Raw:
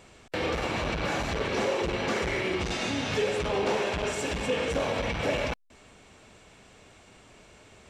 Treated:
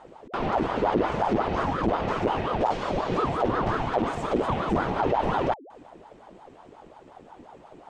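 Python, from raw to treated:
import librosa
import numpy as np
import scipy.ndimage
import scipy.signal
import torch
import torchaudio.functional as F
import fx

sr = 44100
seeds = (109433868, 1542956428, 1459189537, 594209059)

y = fx.tilt_eq(x, sr, slope=-3.5)
y = fx.ring_lfo(y, sr, carrier_hz=580.0, swing_pct=55, hz=5.6)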